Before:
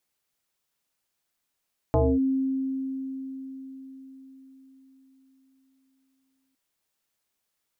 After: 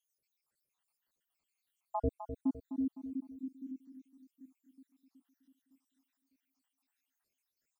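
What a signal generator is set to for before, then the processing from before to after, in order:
two-operator FM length 4.61 s, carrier 266 Hz, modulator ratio 0.73, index 3, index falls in 0.25 s linear, decay 4.93 s, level −17 dB
time-frequency cells dropped at random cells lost 80%
brickwall limiter −25 dBFS
on a send: repeating echo 255 ms, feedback 45%, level −10 dB

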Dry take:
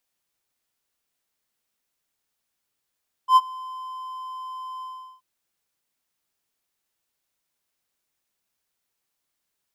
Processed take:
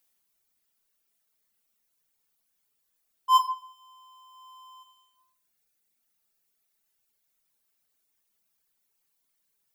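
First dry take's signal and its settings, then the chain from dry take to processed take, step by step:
note with an ADSR envelope triangle 1,030 Hz, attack 83 ms, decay 40 ms, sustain −23.5 dB, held 1.54 s, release 390 ms −7 dBFS
high-shelf EQ 9,400 Hz +10 dB
reverb reduction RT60 2 s
rectangular room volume 1,000 cubic metres, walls furnished, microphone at 1.5 metres

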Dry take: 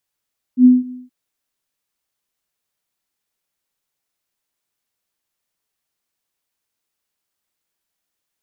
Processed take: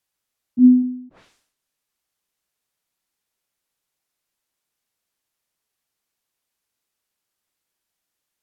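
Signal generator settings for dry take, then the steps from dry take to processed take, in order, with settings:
note with an ADSR envelope sine 251 Hz, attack 79 ms, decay 181 ms, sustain −23.5 dB, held 0.34 s, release 185 ms −3.5 dBFS
treble cut that deepens with the level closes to 370 Hz, closed at −25 dBFS
level that may fall only so fast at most 86 dB per second

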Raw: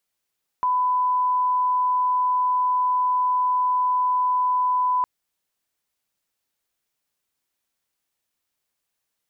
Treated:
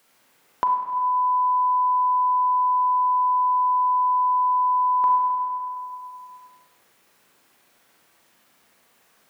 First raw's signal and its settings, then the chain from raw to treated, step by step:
line-up tone −18 dBFS 4.41 s
four-comb reverb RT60 1.5 s, combs from 33 ms, DRR −2.5 dB
multiband upward and downward compressor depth 70%

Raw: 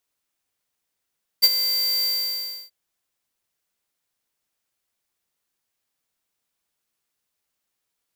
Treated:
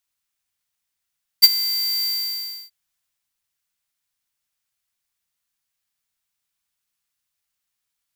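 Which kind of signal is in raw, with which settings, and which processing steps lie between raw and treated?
note with an ADSR envelope square 4,670 Hz, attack 22 ms, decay 40 ms, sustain −11 dB, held 0.62 s, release 661 ms −11.5 dBFS
parametric band 410 Hz −13 dB 1.8 octaves
transient designer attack +6 dB, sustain +2 dB

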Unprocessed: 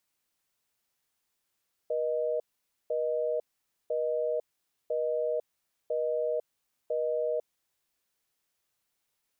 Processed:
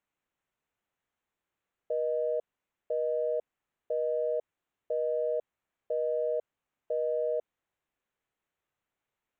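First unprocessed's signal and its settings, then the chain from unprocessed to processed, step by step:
call progress tone busy tone, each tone −29.5 dBFS 5.55 s
adaptive Wiener filter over 9 samples

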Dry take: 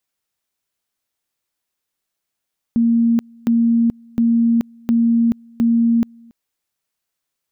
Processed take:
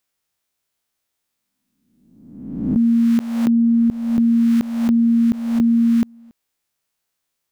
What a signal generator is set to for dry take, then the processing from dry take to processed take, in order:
tone at two levels in turn 232 Hz −11.5 dBFS, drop 29.5 dB, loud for 0.43 s, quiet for 0.28 s, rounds 5
peak hold with a rise ahead of every peak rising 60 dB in 1.07 s

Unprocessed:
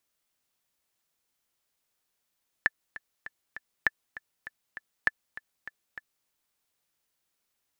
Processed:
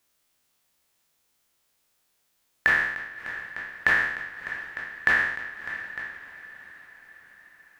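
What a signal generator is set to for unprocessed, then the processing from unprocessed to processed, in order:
click track 199 BPM, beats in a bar 4, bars 3, 1,750 Hz, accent 17.5 dB −8.5 dBFS
peak hold with a decay on every bin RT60 0.82 s
in parallel at −0.5 dB: brickwall limiter −20 dBFS
on the sum: feedback delay with all-pass diffusion 619 ms, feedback 53%, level −15 dB

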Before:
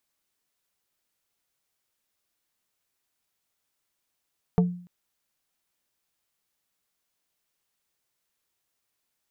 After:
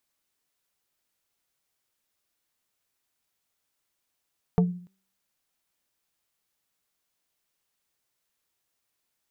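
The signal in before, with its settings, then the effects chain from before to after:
struck wood plate, length 0.29 s, lowest mode 177 Hz, decay 0.50 s, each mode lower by 5.5 dB, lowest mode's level −14.5 dB
hum removal 191.5 Hz, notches 2

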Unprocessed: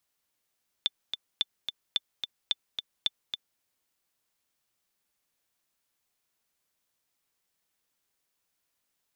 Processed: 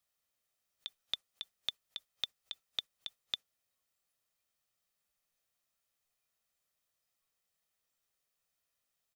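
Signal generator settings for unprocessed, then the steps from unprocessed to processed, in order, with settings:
click track 218 BPM, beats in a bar 2, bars 5, 3,530 Hz, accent 7 dB −12 dBFS
comb filter 1.6 ms, depth 37%
noise reduction from a noise print of the clip's start 11 dB
compressor whose output falls as the input rises −37 dBFS, ratio −1

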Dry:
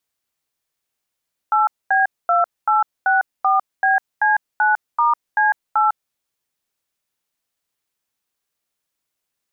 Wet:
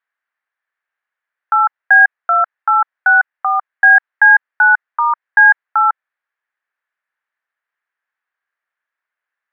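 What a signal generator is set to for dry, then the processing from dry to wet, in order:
touch tones "8B2864BC9*C8", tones 152 ms, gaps 233 ms, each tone −15.5 dBFS
high-pass filter 710 Hz 12 dB per octave
dynamic equaliser 1,200 Hz, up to −3 dB, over −30 dBFS, Q 6.2
low-pass with resonance 1,700 Hz, resonance Q 4

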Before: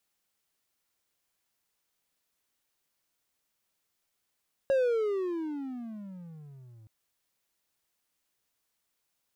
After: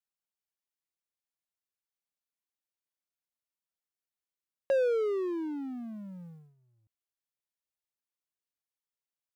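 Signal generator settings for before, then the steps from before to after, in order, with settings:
pitch glide with a swell triangle, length 2.17 s, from 553 Hz, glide −28.5 semitones, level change −29 dB, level −19.5 dB
noise gate −46 dBFS, range −18 dB

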